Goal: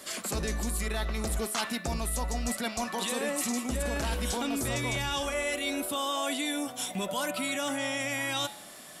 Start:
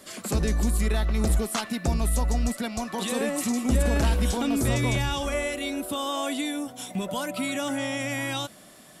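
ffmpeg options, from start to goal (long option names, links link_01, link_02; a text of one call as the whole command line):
ffmpeg -i in.wav -af "lowshelf=frequency=390:gain=-9,bandreject=frequency=105.6:width_type=h:width=4,bandreject=frequency=211.2:width_type=h:width=4,bandreject=frequency=316.8:width_type=h:width=4,bandreject=frequency=422.4:width_type=h:width=4,bandreject=frequency=528:width_type=h:width=4,bandreject=frequency=633.6:width_type=h:width=4,bandreject=frequency=739.2:width_type=h:width=4,bandreject=frequency=844.8:width_type=h:width=4,bandreject=frequency=950.4:width_type=h:width=4,bandreject=frequency=1056:width_type=h:width=4,bandreject=frequency=1161.6:width_type=h:width=4,bandreject=frequency=1267.2:width_type=h:width=4,bandreject=frequency=1372.8:width_type=h:width=4,bandreject=frequency=1478.4:width_type=h:width=4,bandreject=frequency=1584:width_type=h:width=4,bandreject=frequency=1689.6:width_type=h:width=4,bandreject=frequency=1795.2:width_type=h:width=4,bandreject=frequency=1900.8:width_type=h:width=4,bandreject=frequency=2006.4:width_type=h:width=4,bandreject=frequency=2112:width_type=h:width=4,bandreject=frequency=2217.6:width_type=h:width=4,bandreject=frequency=2323.2:width_type=h:width=4,bandreject=frequency=2428.8:width_type=h:width=4,bandreject=frequency=2534.4:width_type=h:width=4,bandreject=frequency=2640:width_type=h:width=4,bandreject=frequency=2745.6:width_type=h:width=4,bandreject=frequency=2851.2:width_type=h:width=4,bandreject=frequency=2956.8:width_type=h:width=4,bandreject=frequency=3062.4:width_type=h:width=4,bandreject=frequency=3168:width_type=h:width=4,bandreject=frequency=3273.6:width_type=h:width=4,bandreject=frequency=3379.2:width_type=h:width=4,bandreject=frequency=3484.8:width_type=h:width=4,bandreject=frequency=3590.4:width_type=h:width=4,bandreject=frequency=3696:width_type=h:width=4,bandreject=frequency=3801.6:width_type=h:width=4,bandreject=frequency=3907.2:width_type=h:width=4,bandreject=frequency=4012.8:width_type=h:width=4,areverse,acompressor=threshold=-32dB:ratio=6,areverse,volume=4.5dB" out.wav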